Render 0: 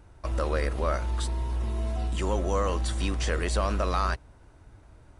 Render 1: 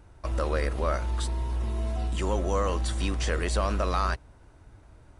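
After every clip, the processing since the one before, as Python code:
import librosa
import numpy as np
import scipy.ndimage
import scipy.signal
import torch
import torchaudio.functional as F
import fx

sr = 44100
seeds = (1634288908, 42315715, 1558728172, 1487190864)

y = x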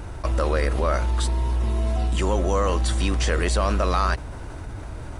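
y = fx.env_flatten(x, sr, amount_pct=50)
y = y * librosa.db_to_amplitude(3.5)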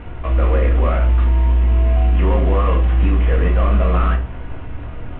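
y = fx.cvsd(x, sr, bps=16000)
y = fx.room_shoebox(y, sr, seeds[0], volume_m3=240.0, walls='furnished', distance_m=1.8)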